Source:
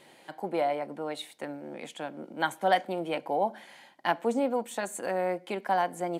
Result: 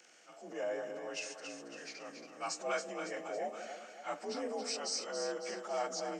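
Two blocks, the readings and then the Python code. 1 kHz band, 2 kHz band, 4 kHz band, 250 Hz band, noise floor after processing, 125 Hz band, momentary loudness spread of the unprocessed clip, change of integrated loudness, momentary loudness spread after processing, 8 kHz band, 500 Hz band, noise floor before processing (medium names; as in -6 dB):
-13.0 dB, -8.5 dB, -1.5 dB, -12.0 dB, -56 dBFS, -15.5 dB, 12 LU, -9.0 dB, 11 LU, +3.0 dB, -8.5 dB, -57 dBFS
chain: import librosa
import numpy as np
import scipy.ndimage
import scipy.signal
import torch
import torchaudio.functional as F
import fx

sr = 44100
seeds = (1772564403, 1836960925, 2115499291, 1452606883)

y = fx.partial_stretch(x, sr, pct=87)
y = fx.transient(y, sr, attack_db=-6, sustain_db=5)
y = fx.riaa(y, sr, side='recording')
y = fx.echo_split(y, sr, split_hz=640.0, low_ms=180, high_ms=277, feedback_pct=52, wet_db=-7.0)
y = y * librosa.db_to_amplitude(-6.0)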